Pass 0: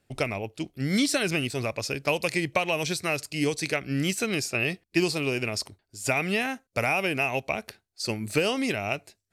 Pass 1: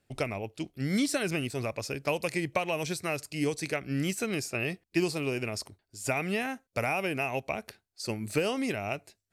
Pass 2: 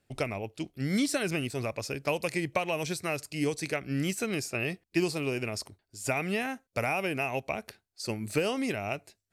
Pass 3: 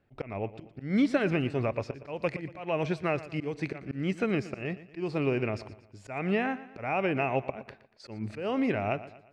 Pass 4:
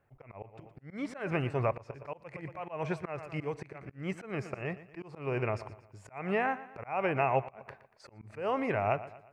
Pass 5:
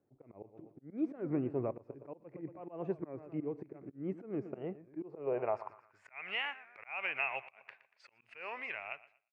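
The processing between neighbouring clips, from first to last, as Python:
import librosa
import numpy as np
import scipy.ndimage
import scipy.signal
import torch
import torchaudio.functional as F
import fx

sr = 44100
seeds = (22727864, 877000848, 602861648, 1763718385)

y1 = fx.dynamic_eq(x, sr, hz=3800.0, q=0.81, threshold_db=-40.0, ratio=4.0, max_db=-5)
y1 = y1 * librosa.db_to_amplitude(-3.0)
y2 = y1
y3 = scipy.signal.sosfilt(scipy.signal.butter(2, 2000.0, 'lowpass', fs=sr, output='sos'), y2)
y3 = fx.auto_swell(y3, sr, attack_ms=207.0)
y3 = fx.echo_feedback(y3, sr, ms=118, feedback_pct=43, wet_db=-16)
y3 = y3 * librosa.db_to_amplitude(4.0)
y4 = fx.graphic_eq(y3, sr, hz=(125, 250, 500, 1000, 2000, 4000), db=(5, -6, 3, 9, 3, -8))
y4 = fx.auto_swell(y4, sr, attack_ms=223.0)
y4 = fx.high_shelf(y4, sr, hz=6000.0, db=6.0)
y4 = y4 * librosa.db_to_amplitude(-4.0)
y5 = fx.fade_out_tail(y4, sr, length_s=0.79)
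y5 = fx.filter_sweep_bandpass(y5, sr, from_hz=300.0, to_hz=2600.0, start_s=4.96, end_s=6.25, q=2.4)
y5 = fx.record_warp(y5, sr, rpm=33.33, depth_cents=160.0)
y5 = y5 * librosa.db_to_amplitude(4.0)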